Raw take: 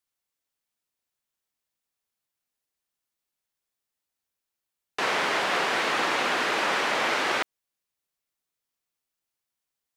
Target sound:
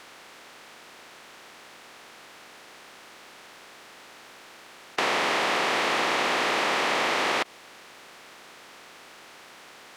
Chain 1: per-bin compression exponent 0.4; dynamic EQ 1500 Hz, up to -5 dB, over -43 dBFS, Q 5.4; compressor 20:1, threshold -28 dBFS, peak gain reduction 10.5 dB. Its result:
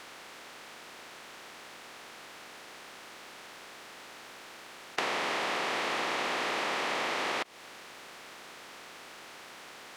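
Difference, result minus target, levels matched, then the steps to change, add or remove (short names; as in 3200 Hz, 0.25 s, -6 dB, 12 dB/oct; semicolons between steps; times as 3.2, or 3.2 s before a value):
compressor: peak gain reduction +7 dB
change: compressor 20:1, threshold -20.5 dBFS, peak gain reduction 3 dB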